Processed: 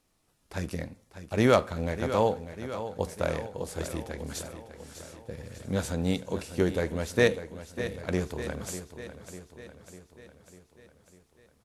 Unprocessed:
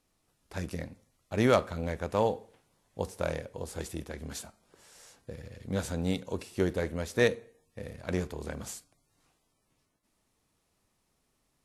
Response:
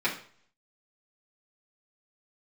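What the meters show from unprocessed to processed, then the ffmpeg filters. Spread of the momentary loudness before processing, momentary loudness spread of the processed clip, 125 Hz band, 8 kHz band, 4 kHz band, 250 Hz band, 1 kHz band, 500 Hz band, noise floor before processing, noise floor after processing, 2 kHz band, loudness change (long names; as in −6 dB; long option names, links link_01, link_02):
18 LU, 20 LU, +3.0 dB, +3.0 dB, +3.0 dB, +3.0 dB, +3.0 dB, +3.0 dB, −76 dBFS, −68 dBFS, +3.0 dB, +2.5 dB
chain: -af "aecho=1:1:598|1196|1794|2392|2990|3588|4186:0.266|0.154|0.0895|0.0519|0.0301|0.0175|0.0101,volume=2.5dB"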